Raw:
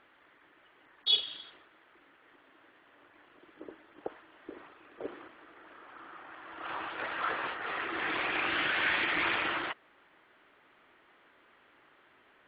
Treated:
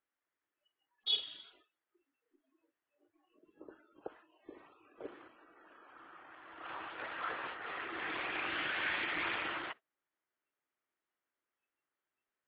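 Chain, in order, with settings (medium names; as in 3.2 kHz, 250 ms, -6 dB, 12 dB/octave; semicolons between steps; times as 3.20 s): 3.69–4.66 s: peaking EQ 1.4 kHz +6 dB -> -5.5 dB 0.26 oct; spectral noise reduction 24 dB; trim -6.5 dB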